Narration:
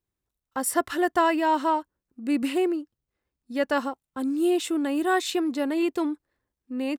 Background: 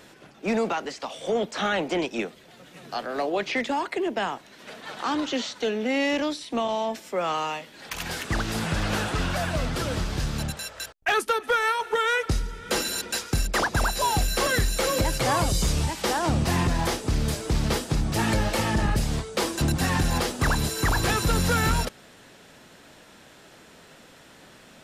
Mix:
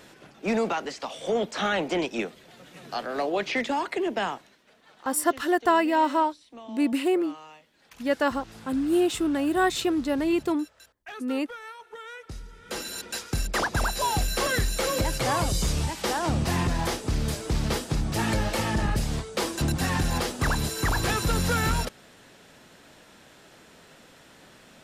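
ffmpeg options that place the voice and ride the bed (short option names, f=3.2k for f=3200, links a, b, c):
-filter_complex "[0:a]adelay=4500,volume=0.5dB[a];[1:a]volume=15.5dB,afade=t=out:st=4.29:d=0.32:silence=0.133352,afade=t=in:st=12.21:d=1.39:silence=0.158489[b];[a][b]amix=inputs=2:normalize=0"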